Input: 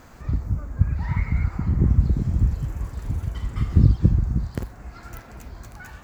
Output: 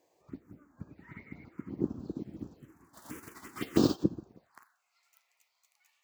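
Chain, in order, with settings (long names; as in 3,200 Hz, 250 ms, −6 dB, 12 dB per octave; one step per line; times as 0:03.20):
0:02.93–0:04.02: spectral envelope flattened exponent 0.6
phaser swept by the level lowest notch 220 Hz, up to 2,100 Hz, full sweep at −15.5 dBFS
high-pass filter sweep 310 Hz → 2,000 Hz, 0:04.21–0:04.80
expander for the loud parts 1.5 to 1, over −48 dBFS
level −3.5 dB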